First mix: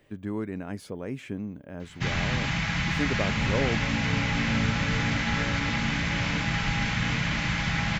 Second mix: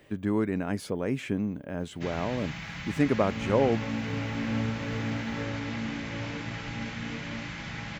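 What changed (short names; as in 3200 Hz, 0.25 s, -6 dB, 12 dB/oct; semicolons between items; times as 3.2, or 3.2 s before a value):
speech +5.5 dB; first sound -10.5 dB; master: add low shelf 74 Hz -6 dB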